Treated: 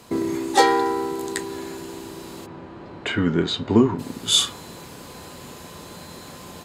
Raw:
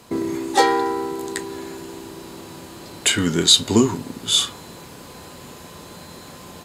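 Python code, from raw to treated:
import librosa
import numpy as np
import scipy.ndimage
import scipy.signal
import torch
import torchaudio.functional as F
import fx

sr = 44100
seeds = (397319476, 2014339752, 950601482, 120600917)

y = fx.lowpass(x, sr, hz=1800.0, slope=12, at=(2.45, 3.98), fade=0.02)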